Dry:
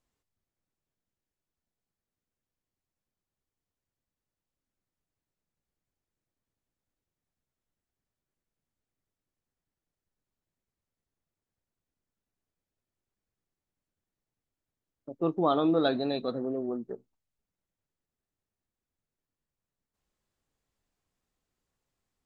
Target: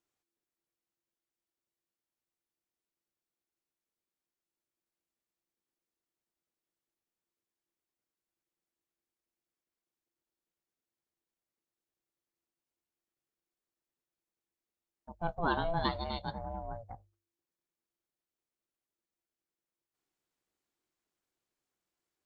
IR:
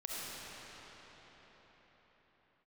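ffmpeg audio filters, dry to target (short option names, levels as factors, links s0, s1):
-af "lowshelf=f=430:g=-8,aeval=exprs='val(0)*sin(2*PI*340*n/s)':c=same,bandreject=f=50:t=h:w=6,bandreject=f=100:t=h:w=6"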